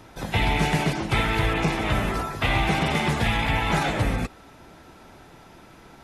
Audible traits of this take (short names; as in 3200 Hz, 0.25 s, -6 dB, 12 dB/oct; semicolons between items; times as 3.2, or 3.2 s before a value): noise floor -49 dBFS; spectral tilt -4.0 dB/oct